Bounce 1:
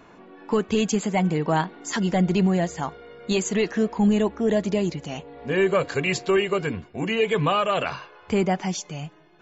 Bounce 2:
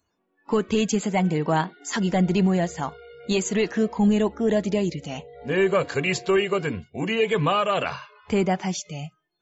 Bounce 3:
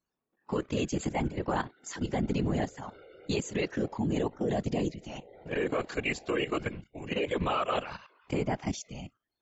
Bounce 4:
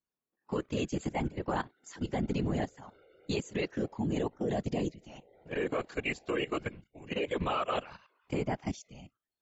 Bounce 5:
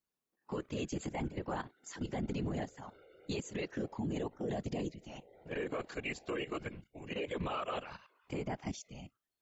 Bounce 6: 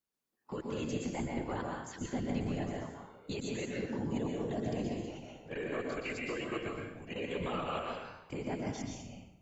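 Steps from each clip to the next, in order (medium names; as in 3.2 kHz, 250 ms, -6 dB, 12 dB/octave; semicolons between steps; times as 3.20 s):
spectral noise reduction 27 dB
whisper effect; level held to a coarse grid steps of 12 dB; trim -4.5 dB
upward expansion 1.5:1, over -42 dBFS; trim -1.5 dB
peak limiter -30 dBFS, peak gain reduction 10.5 dB; trim +1 dB
plate-style reverb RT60 0.82 s, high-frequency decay 0.8×, pre-delay 110 ms, DRR -0.5 dB; trim -1.5 dB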